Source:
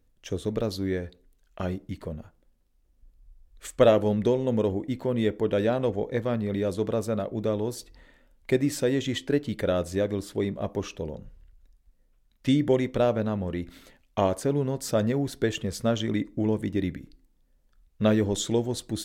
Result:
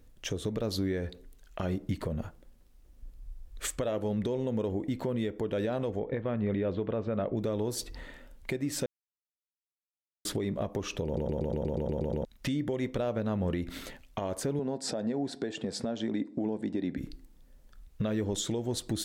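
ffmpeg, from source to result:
-filter_complex "[0:a]asettb=1/sr,asplit=3[s0][s1][s2];[s0]atrim=end=5.994[s3];[s1]atrim=start=5.99:end=7.37,asetpts=PTS-STARTPTS,afade=t=in:d=0.004:c=qsin,afade=t=out:st=1.376:d=0.004:c=qsin,lowpass=f=3100:w=0.5412,lowpass=f=3100:w=1.3066[s4];[s2]atrim=start=7.366[s5];[s3][s4]acrossfade=d=0.004:c1=hsin:c2=qsin[s6];[s6][s5]acrossfade=d=0.004:c1=qsin:c2=hsin,asettb=1/sr,asplit=3[s7][s8][s9];[s7]atrim=end=14.594[s10];[s8]atrim=start=14.59:end=16.98,asetpts=PTS-STARTPTS,afade=t=in:d=0.004:c=qsin,afade=t=out:st=2.386:d=0.004:c=qsin,highpass=210,equalizer=f=240:t=q:w=4:g=5,equalizer=f=760:t=q:w=4:g=7,equalizer=f=1200:t=q:w=4:g=-8,equalizer=f=2100:t=q:w=4:g=-5,equalizer=f=3000:t=q:w=4:g=-7,equalizer=f=6300:t=q:w=4:g=-9,lowpass=f=7700:w=0.5412,lowpass=f=7700:w=1.3066[s11];[s9]atrim=start=16.976[s12];[s10][s11]acrossfade=d=0.004:c1=hsin:c2=qsin[s13];[s13][s12]acrossfade=d=0.004:c1=qsin:c2=hsin,asplit=13[s14][s15][s16][s17][s18][s19][s20][s21][s22][s23][s24][s25][s26];[s14]atrim=end=8.86,asetpts=PTS-STARTPTS,afade=t=out:st=8.856:d=0.004:c=hsin[s27];[s15]atrim=start=8.86:end=10.25,asetpts=PTS-STARTPTS,volume=0[s28];[s16]atrim=start=10.25:end=11.172,asetpts=PTS-STARTPTS,afade=t=in:d=0.004:c=hsin[s29];[s17]atrim=start=11.048:end=11.172[s30];[s18]atrim=start=11.048:end=11.172[s31];[s19]atrim=start=11.048:end=11.172[s32];[s20]atrim=start=11.048:end=11.172[s33];[s21]atrim=start=11.048:end=11.172[s34];[s22]atrim=start=11.048:end=11.172[s35];[s23]atrim=start=11.048:end=11.172[s36];[s24]atrim=start=11.048:end=11.172[s37];[s25]atrim=start=11.048:end=11.172[s38];[s26]atrim=start=12.248[s39];[s27][s28][s29]concat=n=3:v=0:a=1[s40];[s40][s30]acrossfade=d=0.004:c1=hsin:c2=hsin[s41];[s41][s31]acrossfade=d=0.004:c1=hsin:c2=hsin[s42];[s42][s32]acrossfade=d=0.004:c1=hsin:c2=hsin[s43];[s43][s33]acrossfade=d=0.004:c1=hsin:c2=hsin[s44];[s44][s34]acrossfade=d=0.004:c1=hsin:c2=hsin[s45];[s45][s35]acrossfade=d=0.004:c1=hsin:c2=hsin[s46];[s46][s36]acrossfade=d=0.004:c1=hsin:c2=hsin[s47];[s47][s37]acrossfade=d=0.004:c1=hsin:c2=hsin[s48];[s48][s38]acrossfade=d=0.004:c1=hsin:c2=hsin[s49];[s49][s39]acrossfade=d=0.004:c1=hsin:c2=hsin,acompressor=threshold=0.0178:ratio=6,alimiter=level_in=2.37:limit=0.0631:level=0:latency=1:release=140,volume=0.422,volume=2.82"

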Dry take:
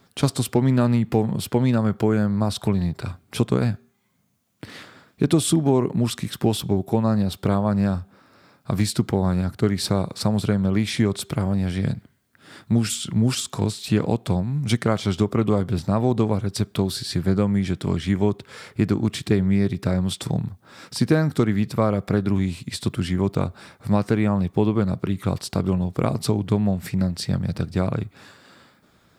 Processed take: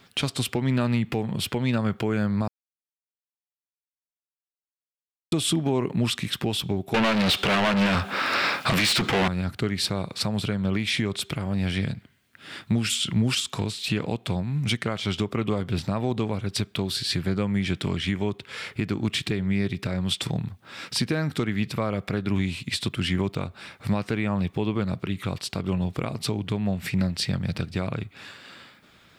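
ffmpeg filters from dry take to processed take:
-filter_complex "[0:a]asettb=1/sr,asplit=3[s0][s1][s2];[s0]atrim=end=6.944[s3];[s1]atrim=start=6.94:end=9.28,asetpts=PTS-STARTPTS,afade=t=in:d=0.004:c=qsin,afade=t=out:st=2.336:d=0.004:c=qsin,asplit=2[s4][s5];[s5]highpass=f=720:p=1,volume=63.1,asoftclip=type=tanh:threshold=0.473[s6];[s4][s6]amix=inputs=2:normalize=0,lowpass=f=4900:p=1,volume=0.501[s7];[s2]atrim=start=9.276[s8];[s3][s7]acrossfade=d=0.004:c1=hsin:c2=qsin[s9];[s9][s8]acrossfade=d=0.004:c1=qsin:c2=hsin,asplit=3[s10][s11][s12];[s10]atrim=end=2.48,asetpts=PTS-STARTPTS,afade=t=out:st=2.476:d=0.004:c=hsin[s13];[s11]atrim=start=2.48:end=5.32,asetpts=PTS-STARTPTS,volume=0[s14];[s12]atrim=start=5.32,asetpts=PTS-STARTPTS,afade=t=in:d=0.004:c=hsin[s15];[s13][s14][s15]concat=n=3:v=0:a=1,equalizer=f=2700:w=0.98:g=10.5,alimiter=limit=0.2:level=0:latency=1:release=416"

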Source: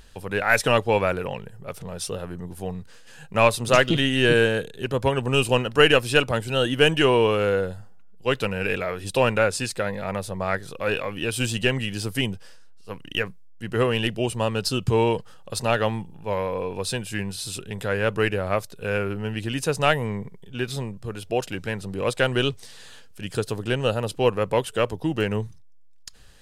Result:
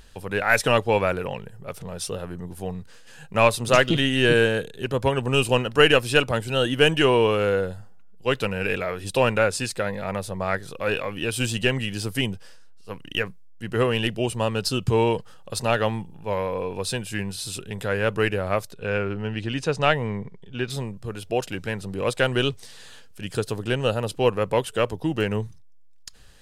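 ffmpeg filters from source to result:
-filter_complex "[0:a]asettb=1/sr,asplit=3[s0][s1][s2];[s0]atrim=end=18.744[s3];[s1]atrim=start=18.74:end=20.7,asetpts=PTS-STARTPTS,afade=t=in:d=0.004:c=qsin,afade=t=out:st=1.956:d=0.004:c=qsin,lowpass=5400[s4];[s2]atrim=start=20.696[s5];[s3][s4]acrossfade=d=0.004:c1=hsin:c2=qsin[s6];[s6][s5]acrossfade=d=0.004:c1=qsin:c2=hsin"

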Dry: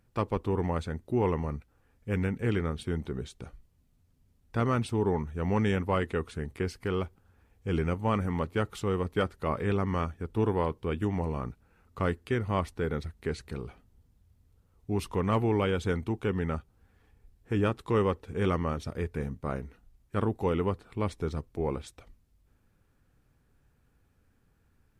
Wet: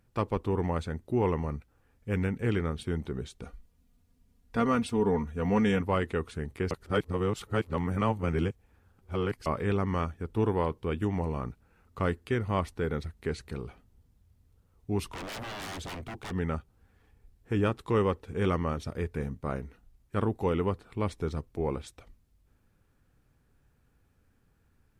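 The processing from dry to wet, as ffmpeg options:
-filter_complex "[0:a]asettb=1/sr,asplit=3[s0][s1][s2];[s0]atrim=end=3.424[s3];[s1]atrim=start=3.42:end=5.81,asetpts=PTS-STARTPTS,afade=t=in:d=0.004:c=qsin,afade=t=out:st=2.386:d=0.004:c=qsin,aecho=1:1:4.2:0.65,atrim=end_sample=105399[s4];[s2]atrim=start=5.806[s5];[s3][s4]acrossfade=d=0.004:c1=hsin:c2=qsin[s6];[s6][s5]acrossfade=d=0.004:c1=qsin:c2=hsin,asplit=3[s7][s8][s9];[s7]afade=t=out:st=15.08:d=0.02[s10];[s8]aeval=exprs='0.02*(abs(mod(val(0)/0.02+3,4)-2)-1)':c=same,afade=t=in:st=15.08:d=0.02,afade=t=out:st=16.3:d=0.02[s11];[s9]afade=t=in:st=16.3:d=0.02[s12];[s10][s11][s12]amix=inputs=3:normalize=0,asplit=3[s13][s14][s15];[s13]atrim=end=6.712[s16];[s14]atrim=start=6.708:end=9.462,asetpts=PTS-STARTPTS,areverse[s17];[s15]atrim=start=9.458[s18];[s16][s17]acrossfade=d=0.004:c1=hsin:c2=hsin[s19];[s19][s18]acrossfade=d=0.004:c1=hsin:c2=hsin"

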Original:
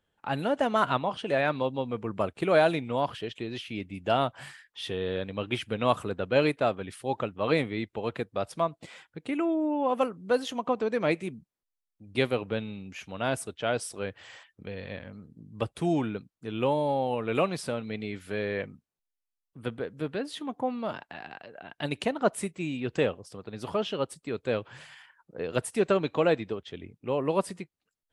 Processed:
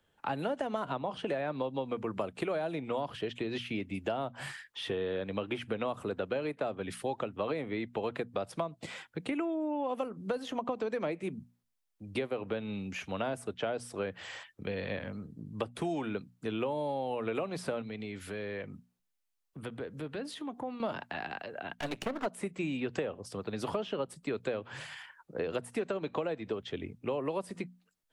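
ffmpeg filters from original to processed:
-filter_complex "[0:a]asettb=1/sr,asplit=3[s0][s1][s2];[s0]atrim=end=17.814[s3];[s1]atrim=start=17.81:end=20.8,asetpts=PTS-STARTPTS,afade=t=in:d=0.004:c=qsin,afade=t=out:st=2.986:d=0.004:c=qsin,acompressor=threshold=0.00631:ratio=2.5:attack=3.2:release=140:knee=1:detection=peak[s4];[s2]atrim=start=20.796[s5];[s3][s4]acrossfade=d=0.004:c1=hsin:c2=qsin[s6];[s6][s5]acrossfade=d=0.004:c1=qsin:c2=hsin,asplit=3[s7][s8][s9];[s7]afade=t=out:st=21.74:d=0.02[s10];[s8]aeval=exprs='max(val(0),0)':c=same,afade=t=in:st=21.74:d=0.02,afade=t=out:st=22.25:d=0.02[s11];[s9]afade=t=in:st=22.25:d=0.02[s12];[s10][s11][s12]amix=inputs=3:normalize=0,acrossover=split=130|340|910|2300[s13][s14][s15][s16][s17];[s13]acompressor=threshold=0.00251:ratio=4[s18];[s14]acompressor=threshold=0.0126:ratio=4[s19];[s15]acompressor=threshold=0.0398:ratio=4[s20];[s16]acompressor=threshold=0.00891:ratio=4[s21];[s17]acompressor=threshold=0.00355:ratio=4[s22];[s18][s19][s20][s21][s22]amix=inputs=5:normalize=0,bandreject=f=60:t=h:w=6,bandreject=f=120:t=h:w=6,bandreject=f=180:t=h:w=6,bandreject=f=240:t=h:w=6,acompressor=threshold=0.0178:ratio=6,volume=1.68"

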